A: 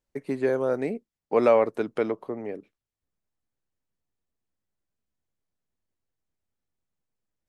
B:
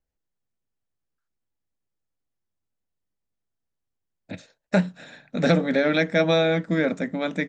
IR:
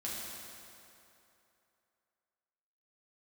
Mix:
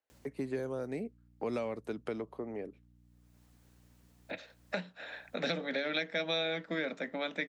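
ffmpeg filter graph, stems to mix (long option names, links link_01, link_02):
-filter_complex "[0:a]acompressor=mode=upward:threshold=-36dB:ratio=2.5,aeval=exprs='val(0)+0.00178*(sin(2*PI*60*n/s)+sin(2*PI*2*60*n/s)/2+sin(2*PI*3*60*n/s)/3+sin(2*PI*4*60*n/s)/4+sin(2*PI*5*60*n/s)/5)':channel_layout=same,adelay=100,volume=-5dB[link_01];[1:a]acrossover=split=380 4300:gain=0.0708 1 0.0631[link_02][link_03][link_04];[link_02][link_03][link_04]amix=inputs=3:normalize=0,alimiter=limit=-13.5dB:level=0:latency=1:release=412,volume=2dB,asplit=2[link_05][link_06];[link_06]apad=whole_len=334372[link_07];[link_01][link_07]sidechaincompress=threshold=-48dB:ratio=8:attack=22:release=288[link_08];[link_08][link_05]amix=inputs=2:normalize=0,highpass=64,acrossover=split=230|3000[link_09][link_10][link_11];[link_10]acompressor=threshold=-36dB:ratio=6[link_12];[link_09][link_12][link_11]amix=inputs=3:normalize=0"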